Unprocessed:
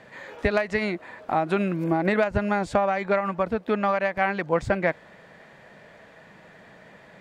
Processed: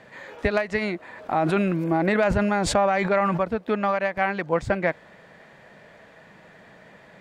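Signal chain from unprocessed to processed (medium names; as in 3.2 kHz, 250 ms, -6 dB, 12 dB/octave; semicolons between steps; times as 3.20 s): 1.11–3.44 s: decay stretcher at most 22 dB/s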